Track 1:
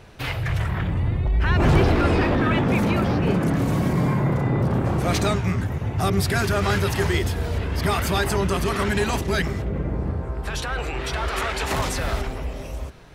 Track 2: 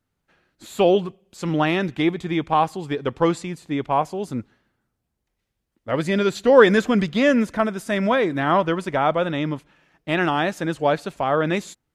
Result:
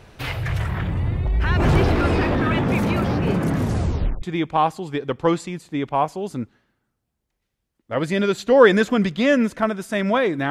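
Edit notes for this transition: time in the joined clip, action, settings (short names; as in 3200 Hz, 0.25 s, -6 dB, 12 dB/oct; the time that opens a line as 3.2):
track 1
3.56 tape stop 0.66 s
4.22 switch to track 2 from 2.19 s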